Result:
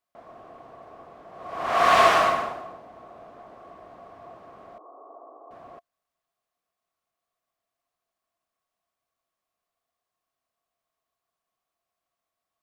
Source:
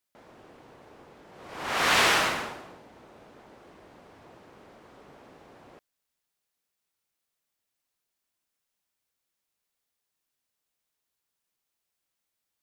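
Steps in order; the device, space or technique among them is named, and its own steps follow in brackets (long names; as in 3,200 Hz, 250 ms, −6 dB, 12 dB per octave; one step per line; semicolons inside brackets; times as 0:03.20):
0:04.78–0:05.51: Chebyshev band-pass filter 290–1,200 Hz, order 4
inside a helmet (high-shelf EQ 3,500 Hz −8 dB; hollow resonant body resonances 690/1,100 Hz, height 16 dB, ringing for 40 ms)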